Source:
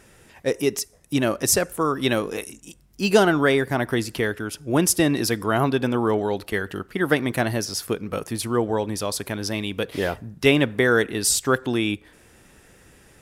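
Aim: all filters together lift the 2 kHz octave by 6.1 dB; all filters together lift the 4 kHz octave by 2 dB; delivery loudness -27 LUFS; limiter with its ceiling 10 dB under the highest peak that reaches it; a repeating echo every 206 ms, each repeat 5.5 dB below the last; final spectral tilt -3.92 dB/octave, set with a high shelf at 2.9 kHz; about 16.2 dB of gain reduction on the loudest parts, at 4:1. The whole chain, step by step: peaking EQ 2 kHz +9 dB; treble shelf 2.9 kHz -6 dB; peaking EQ 4 kHz +4.5 dB; compression 4:1, threshold -31 dBFS; peak limiter -25 dBFS; feedback delay 206 ms, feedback 53%, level -5.5 dB; trim +8 dB

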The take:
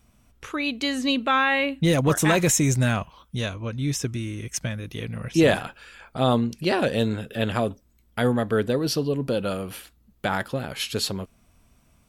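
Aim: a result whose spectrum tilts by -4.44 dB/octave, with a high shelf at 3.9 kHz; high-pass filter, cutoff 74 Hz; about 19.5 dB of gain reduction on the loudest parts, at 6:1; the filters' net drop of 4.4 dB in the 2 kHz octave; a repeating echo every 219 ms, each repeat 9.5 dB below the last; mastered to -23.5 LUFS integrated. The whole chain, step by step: high-pass 74 Hz; peaking EQ 2 kHz -6.5 dB; treble shelf 3.9 kHz +3 dB; compression 6:1, threshold -36 dBFS; feedback delay 219 ms, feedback 33%, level -9.5 dB; trim +15.5 dB

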